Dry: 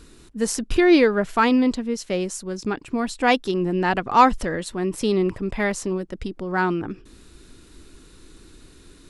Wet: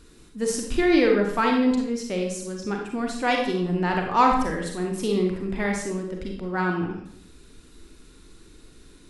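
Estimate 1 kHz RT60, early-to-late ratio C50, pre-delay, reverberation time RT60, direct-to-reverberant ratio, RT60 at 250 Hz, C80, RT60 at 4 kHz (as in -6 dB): 0.65 s, 3.5 dB, 34 ms, 0.65 s, 1.0 dB, 0.85 s, 7.0 dB, 0.55 s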